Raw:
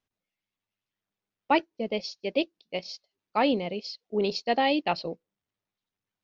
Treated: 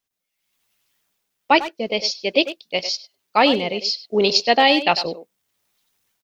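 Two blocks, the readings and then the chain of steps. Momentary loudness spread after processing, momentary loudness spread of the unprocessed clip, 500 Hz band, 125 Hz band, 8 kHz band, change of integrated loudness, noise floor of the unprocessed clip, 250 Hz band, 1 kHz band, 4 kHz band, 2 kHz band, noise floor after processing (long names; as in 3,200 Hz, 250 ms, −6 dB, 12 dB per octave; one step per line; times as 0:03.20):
10 LU, 12 LU, +8.0 dB, +5.0 dB, can't be measured, +9.5 dB, below −85 dBFS, +5.5 dB, +9.0 dB, +14.5 dB, +11.5 dB, −80 dBFS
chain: high-shelf EQ 4,800 Hz +11.5 dB
far-end echo of a speakerphone 100 ms, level −11 dB
automatic gain control gain up to 16 dB
low-shelf EQ 400 Hz −6.5 dB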